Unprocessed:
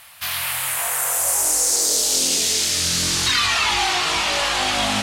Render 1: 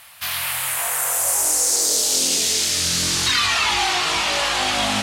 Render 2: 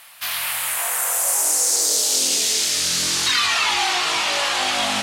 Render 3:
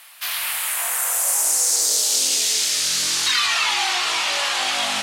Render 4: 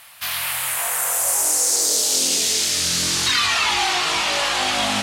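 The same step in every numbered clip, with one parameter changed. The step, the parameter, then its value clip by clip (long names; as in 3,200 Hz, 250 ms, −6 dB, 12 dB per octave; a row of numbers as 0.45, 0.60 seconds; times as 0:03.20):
high-pass filter, corner frequency: 43, 320, 880, 120 Hertz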